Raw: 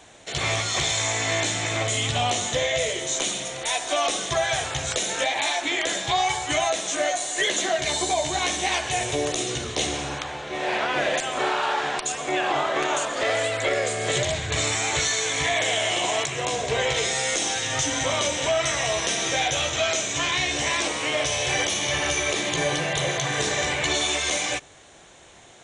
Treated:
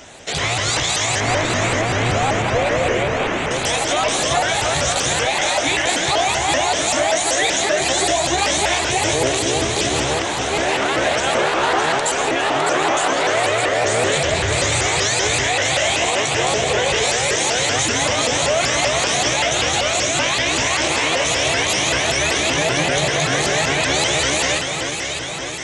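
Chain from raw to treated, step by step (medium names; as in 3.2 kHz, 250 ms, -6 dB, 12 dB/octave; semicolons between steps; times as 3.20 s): 1.20–3.51 s: one-bit delta coder 16 kbps, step -30.5 dBFS; peak limiter -20 dBFS, peak gain reduction 7 dB; echo whose repeats swap between lows and highs 304 ms, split 1.9 kHz, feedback 81%, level -4.5 dB; vibrato with a chosen wave saw up 5.2 Hz, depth 250 cents; trim +9 dB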